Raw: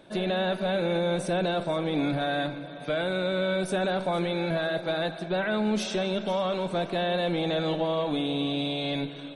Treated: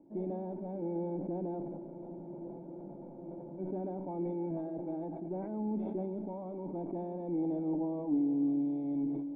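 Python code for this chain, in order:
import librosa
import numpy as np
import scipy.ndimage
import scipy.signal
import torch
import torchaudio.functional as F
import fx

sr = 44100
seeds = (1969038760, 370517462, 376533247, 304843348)

y = fx.formant_cascade(x, sr, vowel='u')
y = fx.spec_freeze(y, sr, seeds[0], at_s=1.66, hold_s=1.92)
y = fx.sustainer(y, sr, db_per_s=29.0)
y = y * librosa.db_to_amplitude(1.0)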